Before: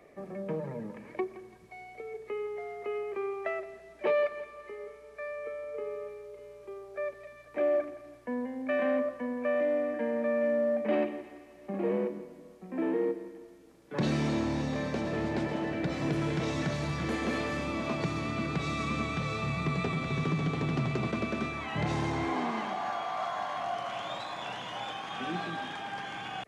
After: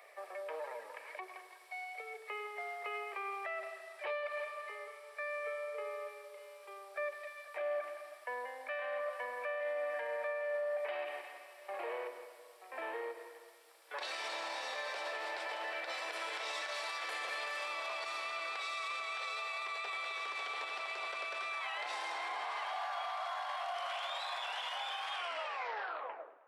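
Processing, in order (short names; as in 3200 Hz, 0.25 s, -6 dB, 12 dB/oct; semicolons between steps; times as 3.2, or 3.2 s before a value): tape stop at the end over 1.34 s; bell 6500 Hz -9.5 dB 0.28 oct; tape echo 0.104 s, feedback 70%, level -18 dB, low-pass 4700 Hz; compressor, threshold -28 dBFS, peak gain reduction 5 dB; Bessel high-pass 1000 Hz, order 6; limiter -37.5 dBFS, peak gain reduction 10.5 dB; bell 1600 Hz -3 dB 2.5 oct; gain +8.5 dB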